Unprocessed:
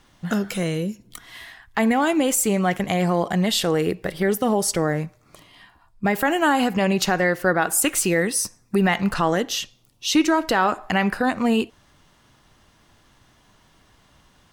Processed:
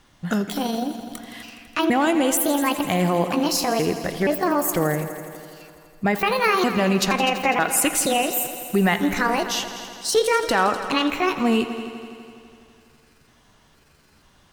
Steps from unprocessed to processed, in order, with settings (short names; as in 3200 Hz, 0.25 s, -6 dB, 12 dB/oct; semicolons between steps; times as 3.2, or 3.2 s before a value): trilling pitch shifter +6.5 st, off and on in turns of 0.474 s; multi-head echo 83 ms, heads all three, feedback 61%, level -16.5 dB